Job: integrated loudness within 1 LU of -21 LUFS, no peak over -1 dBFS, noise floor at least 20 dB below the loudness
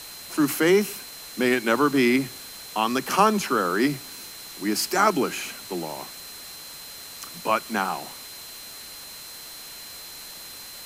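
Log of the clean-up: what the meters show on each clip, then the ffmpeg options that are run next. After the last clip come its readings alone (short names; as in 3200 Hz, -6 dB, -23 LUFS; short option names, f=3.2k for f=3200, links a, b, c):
steady tone 4100 Hz; tone level -43 dBFS; noise floor -41 dBFS; noise floor target -44 dBFS; loudness -24.0 LUFS; peak -4.5 dBFS; loudness target -21.0 LUFS
-> -af "bandreject=f=4.1k:w=30"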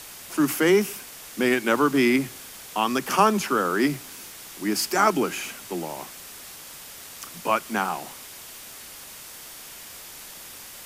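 steady tone none; noise floor -42 dBFS; noise floor target -44 dBFS
-> -af "afftdn=nr=6:nf=-42"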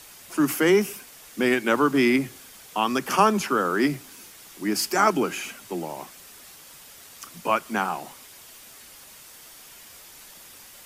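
noise floor -47 dBFS; loudness -24.0 LUFS; peak -5.0 dBFS; loudness target -21.0 LUFS
-> -af "volume=3dB"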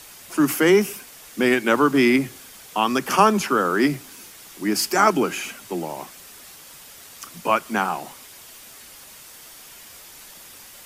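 loudness -21.0 LUFS; peak -2.0 dBFS; noise floor -44 dBFS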